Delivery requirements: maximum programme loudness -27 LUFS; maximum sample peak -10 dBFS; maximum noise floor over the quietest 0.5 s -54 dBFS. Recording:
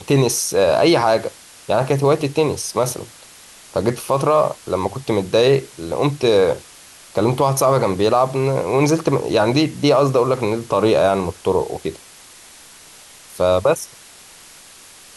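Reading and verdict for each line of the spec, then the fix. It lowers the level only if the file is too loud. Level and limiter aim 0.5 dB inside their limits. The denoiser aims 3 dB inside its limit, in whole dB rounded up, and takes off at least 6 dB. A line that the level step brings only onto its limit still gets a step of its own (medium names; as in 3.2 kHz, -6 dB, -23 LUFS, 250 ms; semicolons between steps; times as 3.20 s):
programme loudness -18.0 LUFS: fail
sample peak -5.0 dBFS: fail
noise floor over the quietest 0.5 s -43 dBFS: fail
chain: noise reduction 6 dB, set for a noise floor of -43 dBFS; trim -9.5 dB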